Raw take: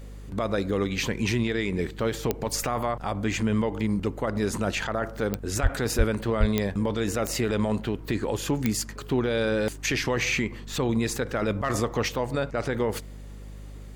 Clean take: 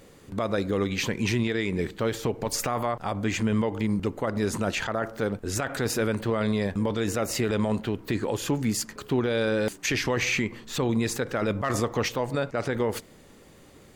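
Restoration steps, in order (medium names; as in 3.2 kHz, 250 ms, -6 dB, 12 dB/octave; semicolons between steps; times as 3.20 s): de-click; de-hum 50.3 Hz, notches 5; 5.62–5.74 s: high-pass 140 Hz 24 dB/octave; 5.97–6.09 s: high-pass 140 Hz 24 dB/octave; 6.39–6.51 s: high-pass 140 Hz 24 dB/octave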